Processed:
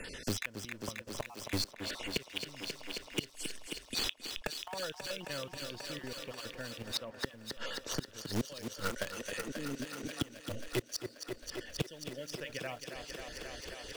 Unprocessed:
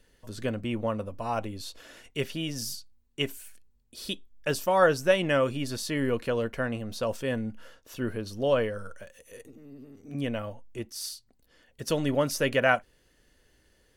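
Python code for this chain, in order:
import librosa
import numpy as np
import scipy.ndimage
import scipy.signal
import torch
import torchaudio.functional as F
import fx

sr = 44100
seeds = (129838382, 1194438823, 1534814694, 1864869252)

p1 = fx.spec_dropout(x, sr, seeds[0], share_pct=30)
p2 = scipy.signal.sosfilt(scipy.signal.butter(2, 5200.0, 'lowpass', fs=sr, output='sos'), p1)
p3 = fx.high_shelf(p2, sr, hz=3000.0, db=11.0)
p4 = fx.quant_dither(p3, sr, seeds[1], bits=6, dither='none')
p5 = p3 + (p4 * 10.0 ** (-3.0 / 20.0))
p6 = fx.gate_flip(p5, sr, shuts_db=-21.0, range_db=-33)
p7 = fx.echo_thinned(p6, sr, ms=268, feedback_pct=81, hz=160.0, wet_db=-10.5)
p8 = fx.band_squash(p7, sr, depth_pct=70)
y = p8 * 10.0 ** (5.5 / 20.0)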